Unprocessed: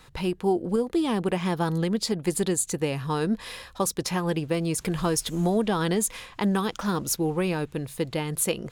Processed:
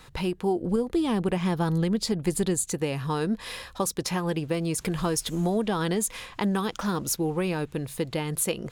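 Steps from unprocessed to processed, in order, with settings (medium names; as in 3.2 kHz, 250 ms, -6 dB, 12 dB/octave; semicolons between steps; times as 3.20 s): 0.61–2.65 s: bass shelf 130 Hz +10 dB; in parallel at +2 dB: compression, threshold -30 dBFS, peak gain reduction 12 dB; on the sum: trim -5 dB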